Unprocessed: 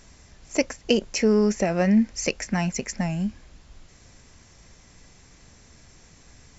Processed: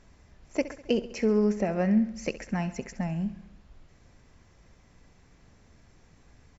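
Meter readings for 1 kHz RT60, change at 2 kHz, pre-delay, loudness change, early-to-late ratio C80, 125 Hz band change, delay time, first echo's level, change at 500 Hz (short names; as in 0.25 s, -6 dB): none, -8.0 dB, none, -4.5 dB, none, -4.5 dB, 67 ms, -15.0 dB, -4.5 dB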